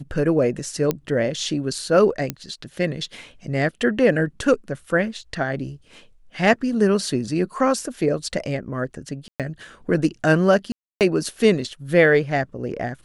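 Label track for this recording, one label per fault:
0.910000	0.910000	pop -8 dBFS
2.300000	2.300000	pop -10 dBFS
9.280000	9.400000	gap 0.117 s
10.720000	11.010000	gap 0.288 s

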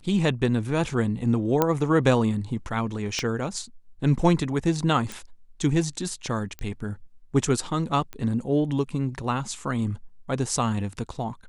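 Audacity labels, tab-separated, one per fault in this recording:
1.620000	1.620000	pop -7 dBFS
3.190000	3.190000	pop -14 dBFS
5.120000	5.120000	pop
6.590000	6.590000	pop -20 dBFS
8.130000	8.130000	pop -21 dBFS

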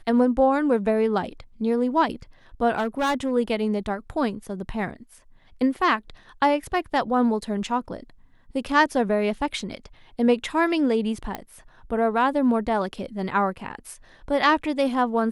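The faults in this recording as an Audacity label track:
2.760000	3.320000	clipped -19.5 dBFS
11.350000	11.350000	pop -16 dBFS

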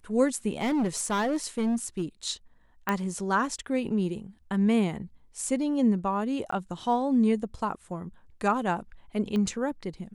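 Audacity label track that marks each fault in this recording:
0.530000	2.030000	clipped -23 dBFS
2.890000	2.890000	pop -13 dBFS
6.510000	6.520000	gap 14 ms
9.360000	9.360000	pop -20 dBFS

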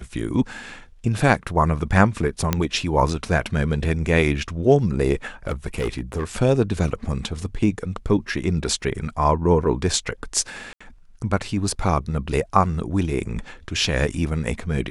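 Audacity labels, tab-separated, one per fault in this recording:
2.530000	2.530000	pop -5 dBFS
5.470000	6.250000	clipped -19.5 dBFS
10.730000	10.800000	gap 75 ms

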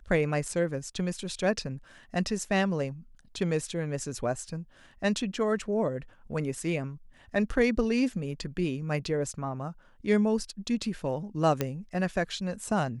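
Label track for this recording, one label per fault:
11.610000	11.610000	pop -13 dBFS

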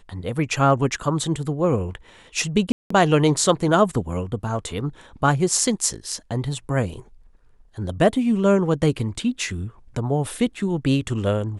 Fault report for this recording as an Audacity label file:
2.720000	2.900000	gap 0.184 s

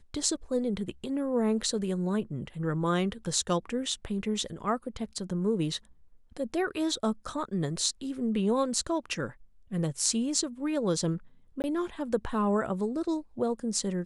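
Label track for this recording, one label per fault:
11.620000	11.640000	gap 19 ms

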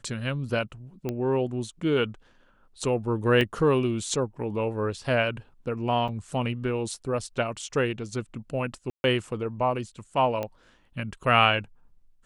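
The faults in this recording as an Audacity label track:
1.090000	1.090000	pop -17 dBFS
3.410000	3.410000	gap 2 ms
6.080000	6.090000	gap 5.8 ms
8.900000	9.040000	gap 0.141 s
10.430000	10.430000	pop -18 dBFS

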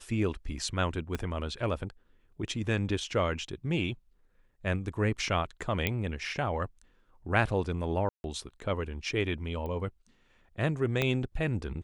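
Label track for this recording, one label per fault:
1.150000	1.150000	pop -19 dBFS
5.870000	5.870000	pop -13 dBFS
8.090000	8.240000	gap 0.151 s
9.660000	9.660000	pop -27 dBFS
11.020000	11.020000	pop -14 dBFS

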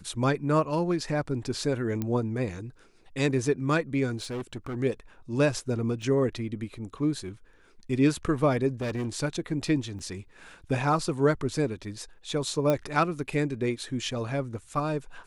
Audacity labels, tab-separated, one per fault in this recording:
2.020000	2.020000	pop -17 dBFS
4.170000	4.750000	clipped -30 dBFS
6.020000	6.020000	gap 3.3 ms
8.810000	9.180000	clipped -27 dBFS
9.990000	10.000000	gap 5.1 ms
12.700000	12.700000	pop -13 dBFS

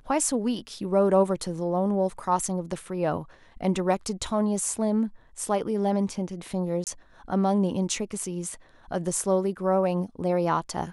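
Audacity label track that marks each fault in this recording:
6.840000	6.870000	gap 28 ms

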